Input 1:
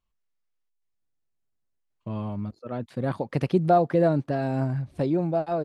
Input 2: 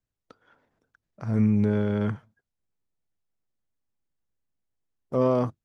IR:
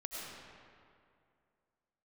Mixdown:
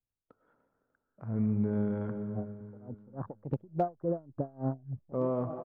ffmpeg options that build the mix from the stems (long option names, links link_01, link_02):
-filter_complex "[0:a]afwtdn=0.0251,acompressor=threshold=-24dB:ratio=6,aeval=exprs='val(0)*pow(10,-28*(0.5-0.5*cos(2*PI*3.5*n/s))/20)':channel_layout=same,adelay=100,volume=-0.5dB[link_01];[1:a]volume=-10.5dB,asplit=4[link_02][link_03][link_04][link_05];[link_03]volume=-4.5dB[link_06];[link_04]volume=-15.5dB[link_07];[link_05]apad=whole_len=253144[link_08];[link_01][link_08]sidechaincompress=threshold=-43dB:ratio=8:attack=6.5:release=121[link_09];[2:a]atrim=start_sample=2205[link_10];[link_06][link_10]afir=irnorm=-1:irlink=0[link_11];[link_07]aecho=0:1:297|594|891|1188|1485|1782:1|0.45|0.202|0.0911|0.041|0.0185[link_12];[link_09][link_02][link_11][link_12]amix=inputs=4:normalize=0,lowpass=1200,asoftclip=type=hard:threshold=-19.5dB"